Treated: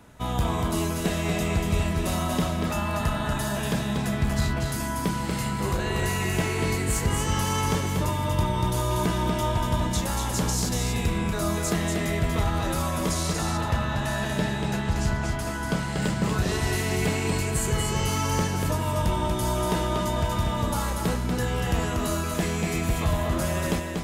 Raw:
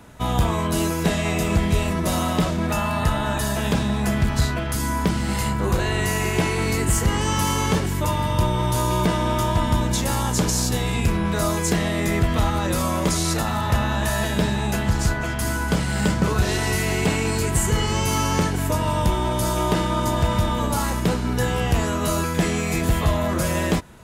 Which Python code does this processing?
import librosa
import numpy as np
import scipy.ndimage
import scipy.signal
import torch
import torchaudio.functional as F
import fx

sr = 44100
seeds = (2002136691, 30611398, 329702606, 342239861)

y = fx.high_shelf(x, sr, hz=11000.0, db=-11.5, at=(13.28, 16.02))
y = y + 10.0 ** (-4.0 / 20.0) * np.pad(y, (int(238 * sr / 1000.0), 0))[:len(y)]
y = y * librosa.db_to_amplitude(-5.5)